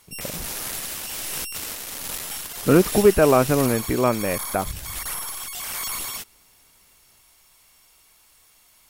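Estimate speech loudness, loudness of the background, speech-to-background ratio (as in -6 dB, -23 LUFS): -20.0 LUFS, -29.0 LUFS, 9.0 dB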